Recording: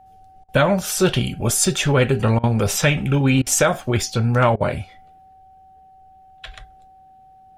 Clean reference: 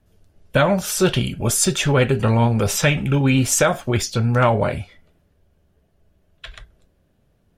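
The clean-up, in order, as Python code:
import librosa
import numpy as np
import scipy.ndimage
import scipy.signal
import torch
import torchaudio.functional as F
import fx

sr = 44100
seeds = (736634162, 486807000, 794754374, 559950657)

y = fx.notch(x, sr, hz=760.0, q=30.0)
y = fx.fix_interpolate(y, sr, at_s=(0.44, 2.39, 3.42, 4.56), length_ms=44.0)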